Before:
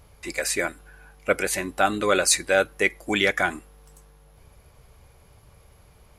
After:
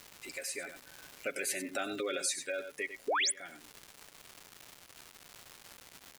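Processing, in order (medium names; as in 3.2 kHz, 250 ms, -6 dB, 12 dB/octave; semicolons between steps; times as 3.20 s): Doppler pass-by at 1.73 s, 7 m/s, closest 2.4 m; comb 7.3 ms, depth 53%; in parallel at +1 dB: peak limiter -15.5 dBFS, peak gain reduction 9.5 dB; on the sum: peaking EQ 1 kHz -14 dB 0.93 oct; on a send: delay 95 ms -11 dB; on the sum: painted sound rise, 3.08–3.32 s, 370–11000 Hz -14 dBFS; high-pass 170 Hz 12 dB/octave; bass shelf 320 Hz -8 dB; spectral gate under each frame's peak -25 dB strong; crackle 440 per s -35 dBFS; compression 2:1, threshold -38 dBFS, peak gain reduction 13.5 dB; trim -2.5 dB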